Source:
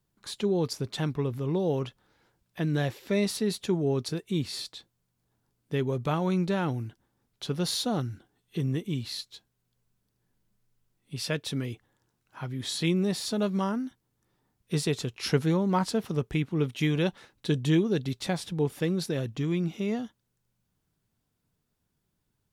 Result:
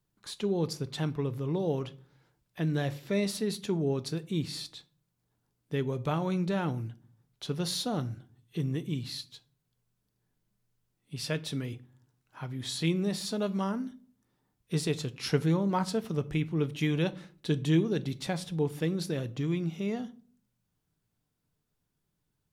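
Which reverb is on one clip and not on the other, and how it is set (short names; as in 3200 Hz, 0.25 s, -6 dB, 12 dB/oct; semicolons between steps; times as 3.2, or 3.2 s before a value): shoebox room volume 460 m³, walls furnished, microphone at 0.43 m; gain -3 dB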